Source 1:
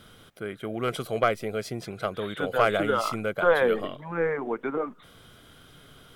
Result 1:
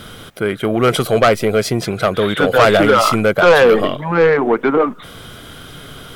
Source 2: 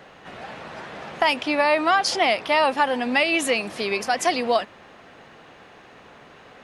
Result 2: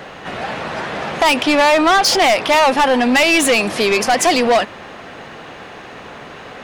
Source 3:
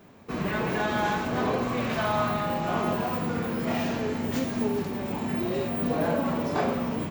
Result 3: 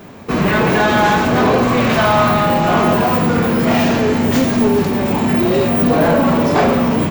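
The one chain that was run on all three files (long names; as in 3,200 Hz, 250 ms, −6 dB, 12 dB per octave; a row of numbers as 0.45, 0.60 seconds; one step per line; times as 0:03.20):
soft clipping −22 dBFS
loudness normalisation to −14 LKFS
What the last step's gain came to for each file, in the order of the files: +17.0, +13.0, +15.5 decibels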